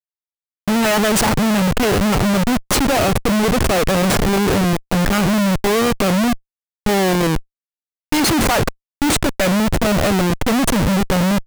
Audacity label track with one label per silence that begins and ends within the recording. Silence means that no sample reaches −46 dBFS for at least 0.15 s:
6.390000	6.860000	silence
7.430000	8.120000	silence
8.730000	9.020000	silence